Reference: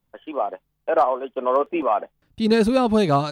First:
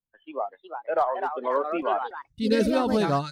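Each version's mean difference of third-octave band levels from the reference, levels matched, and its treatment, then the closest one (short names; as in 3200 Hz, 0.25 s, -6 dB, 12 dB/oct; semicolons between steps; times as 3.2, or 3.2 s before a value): 4.5 dB: spectral noise reduction 17 dB; echoes that change speed 0.409 s, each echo +3 st, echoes 2, each echo -6 dB; gain -5.5 dB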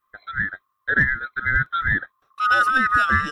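12.5 dB: band-swap scrambler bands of 1000 Hz; bell 6800 Hz -3 dB 2.5 oct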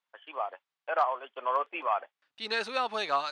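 6.5 dB: HPF 1200 Hz 12 dB/oct; air absorption 110 m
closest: first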